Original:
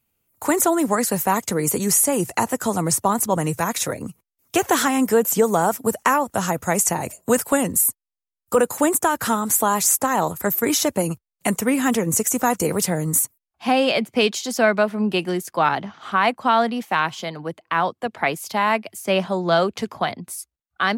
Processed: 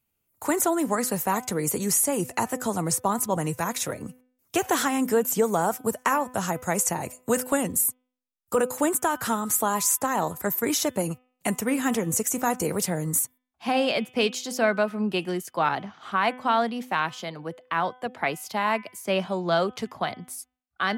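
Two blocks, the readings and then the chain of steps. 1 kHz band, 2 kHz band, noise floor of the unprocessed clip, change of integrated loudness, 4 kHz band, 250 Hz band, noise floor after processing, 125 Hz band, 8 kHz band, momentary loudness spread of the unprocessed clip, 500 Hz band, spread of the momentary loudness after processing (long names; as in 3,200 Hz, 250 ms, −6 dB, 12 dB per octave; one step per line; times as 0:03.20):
−5.0 dB, −5.0 dB, below −85 dBFS, −5.0 dB, −5.0 dB, −5.0 dB, −78 dBFS, −5.0 dB, −5.0 dB, 8 LU, −5.0 dB, 8 LU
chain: hum removal 252.4 Hz, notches 14
level −5 dB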